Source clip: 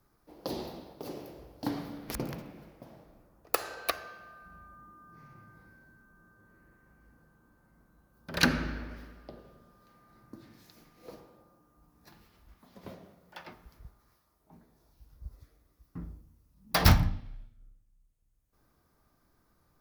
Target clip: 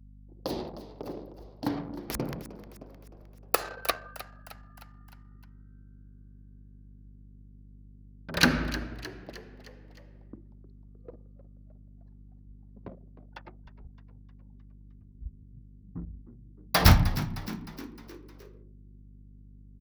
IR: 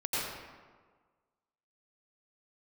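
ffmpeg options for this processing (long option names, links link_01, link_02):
-filter_complex "[0:a]anlmdn=0.158,aeval=exprs='val(0)+0.00224*(sin(2*PI*50*n/s)+sin(2*PI*2*50*n/s)/2+sin(2*PI*3*50*n/s)/3+sin(2*PI*4*50*n/s)/4+sin(2*PI*5*50*n/s)/5)':channel_layout=same,asplit=6[link_01][link_02][link_03][link_04][link_05][link_06];[link_02]adelay=308,afreqshift=65,volume=-15dB[link_07];[link_03]adelay=616,afreqshift=130,volume=-20.5dB[link_08];[link_04]adelay=924,afreqshift=195,volume=-26dB[link_09];[link_05]adelay=1232,afreqshift=260,volume=-31.5dB[link_10];[link_06]adelay=1540,afreqshift=325,volume=-37.1dB[link_11];[link_01][link_07][link_08][link_09][link_10][link_11]amix=inputs=6:normalize=0,volume=3dB"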